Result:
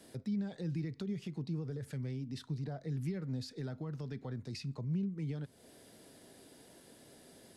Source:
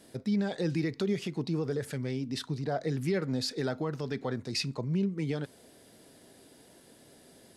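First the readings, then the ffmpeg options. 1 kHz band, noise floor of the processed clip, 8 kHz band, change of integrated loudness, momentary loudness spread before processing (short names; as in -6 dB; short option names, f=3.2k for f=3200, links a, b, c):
-14.0 dB, -60 dBFS, -11.5 dB, -7.5 dB, 4 LU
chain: -filter_complex "[0:a]acrossover=split=190[a][b];[b]acompressor=threshold=-48dB:ratio=3[c];[a][c]amix=inputs=2:normalize=0,volume=-1.5dB"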